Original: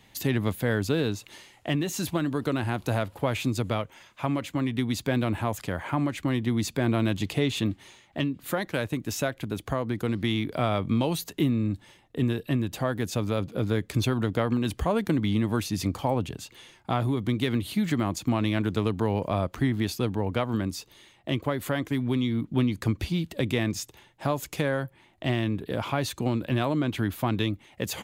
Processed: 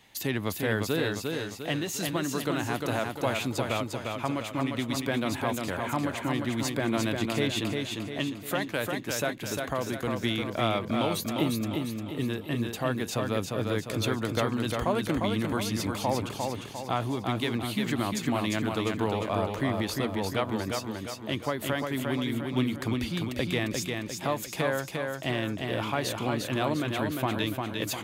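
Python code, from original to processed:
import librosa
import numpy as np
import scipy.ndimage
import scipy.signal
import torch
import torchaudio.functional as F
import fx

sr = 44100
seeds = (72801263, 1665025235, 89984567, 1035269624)

y = fx.low_shelf(x, sr, hz=290.0, db=-8.0)
y = fx.echo_feedback(y, sr, ms=351, feedback_pct=47, wet_db=-4)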